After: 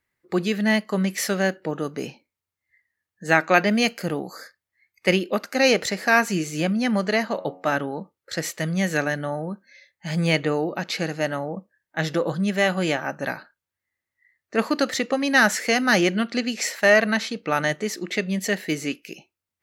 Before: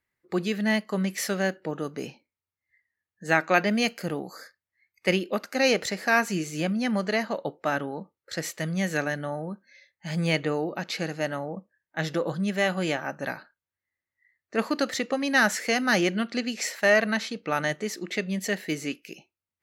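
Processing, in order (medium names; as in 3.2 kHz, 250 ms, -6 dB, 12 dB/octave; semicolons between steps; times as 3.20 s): 7.30–7.72 s: de-hum 91.55 Hz, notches 31; trim +4 dB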